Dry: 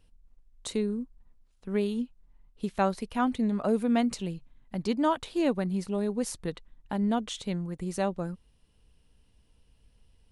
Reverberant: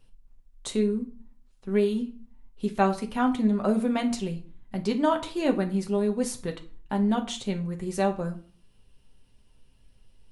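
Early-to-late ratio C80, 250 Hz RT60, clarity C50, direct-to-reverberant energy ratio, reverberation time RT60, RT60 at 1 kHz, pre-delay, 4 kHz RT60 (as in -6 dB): 19.0 dB, 0.60 s, 14.0 dB, 2.5 dB, 0.45 s, 0.45 s, 5 ms, 0.35 s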